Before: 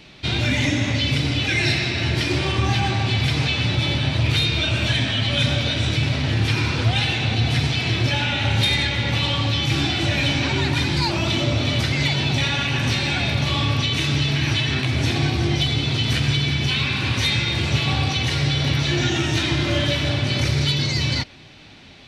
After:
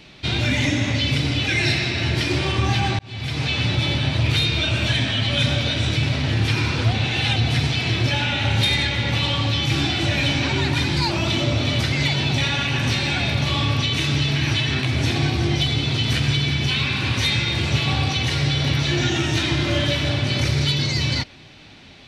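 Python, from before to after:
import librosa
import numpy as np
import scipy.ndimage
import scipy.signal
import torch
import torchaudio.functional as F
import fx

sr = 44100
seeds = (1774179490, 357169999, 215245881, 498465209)

y = fx.edit(x, sr, fx.fade_in_span(start_s=2.99, length_s=0.58),
    fx.reverse_span(start_s=6.93, length_s=0.43), tone=tone)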